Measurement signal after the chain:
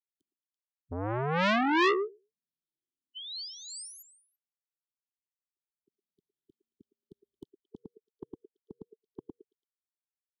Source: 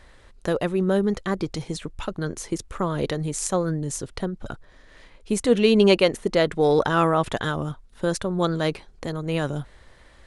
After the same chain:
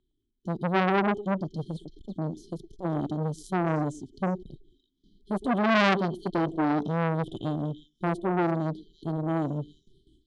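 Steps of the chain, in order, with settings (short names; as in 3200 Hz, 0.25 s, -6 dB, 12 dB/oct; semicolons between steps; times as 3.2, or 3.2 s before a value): moving spectral ripple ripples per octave 0.64, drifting -1.1 Hz, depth 8 dB; gate with hold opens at -38 dBFS; low shelf 240 Hz +10.5 dB; harmonic-percussive split percussive -10 dB; brick-wall FIR band-stop 420–3000 Hz; three-band isolator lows -20 dB, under 160 Hz, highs -15 dB, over 2800 Hz; on a send: delay with a stepping band-pass 0.112 s, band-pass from 670 Hz, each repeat 1.4 oct, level -1.5 dB; on the sum: core saturation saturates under 1800 Hz; gain +1.5 dB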